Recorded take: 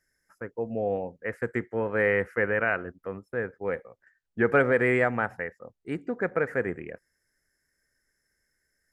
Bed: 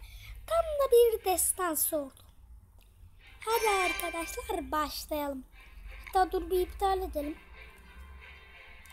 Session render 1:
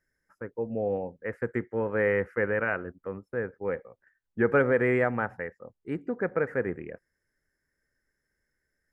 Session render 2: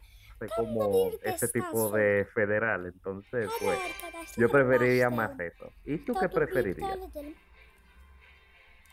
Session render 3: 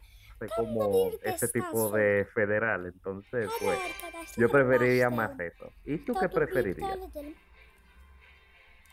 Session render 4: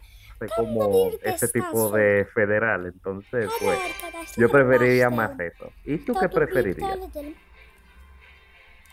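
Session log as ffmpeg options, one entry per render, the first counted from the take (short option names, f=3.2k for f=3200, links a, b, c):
-af "highshelf=f=2.7k:g=-11.5,bandreject=f=690:w=12"
-filter_complex "[1:a]volume=-6dB[a];[0:a][a]amix=inputs=2:normalize=0"
-af anull
-af "volume=6dB"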